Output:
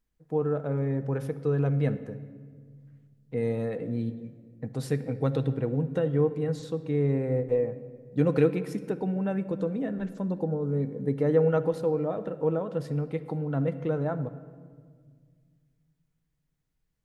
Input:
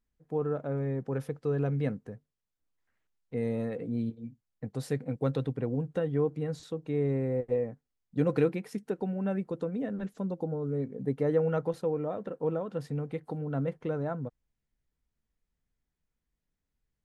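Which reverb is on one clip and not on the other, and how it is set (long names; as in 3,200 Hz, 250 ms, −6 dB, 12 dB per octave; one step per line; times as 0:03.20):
rectangular room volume 2,600 cubic metres, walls mixed, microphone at 0.59 metres
level +2.5 dB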